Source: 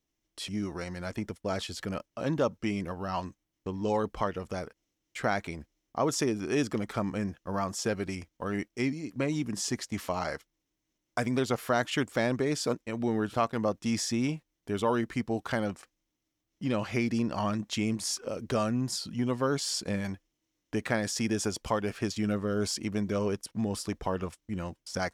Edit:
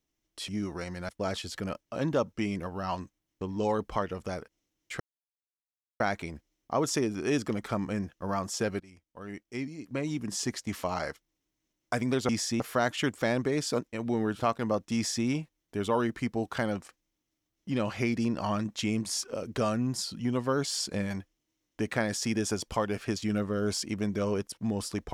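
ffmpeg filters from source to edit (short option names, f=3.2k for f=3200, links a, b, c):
-filter_complex "[0:a]asplit=6[a][b][c][d][e][f];[a]atrim=end=1.092[g];[b]atrim=start=1.338:end=5.25,asetpts=PTS-STARTPTS,afade=t=out:st=3.908:d=0.004:c=hsin,apad=pad_dur=1[h];[c]atrim=start=5.25:end=8.05,asetpts=PTS-STARTPTS,afade=t=in:d=0.004:c=hsin,afade=t=out:st=2.796:d=0.004:c=hsin:silence=0.0891251[i];[d]atrim=start=8.05:end=11.542,asetpts=PTS-STARTPTS,afade=t=in:d=1.68:silence=0.0891251[j];[e]atrim=start=13.888:end=14.202[k];[f]atrim=start=11.538[l];[h][i][j]concat=n=3:v=0:a=1[m];[g][m]acrossfade=d=0.004:c1=hsin:c2=hsin[n];[n][k]acrossfade=d=0.004:c1=hsin:c2=hsin[o];[o][l]acrossfade=d=0.004:c1=hsin:c2=hsin"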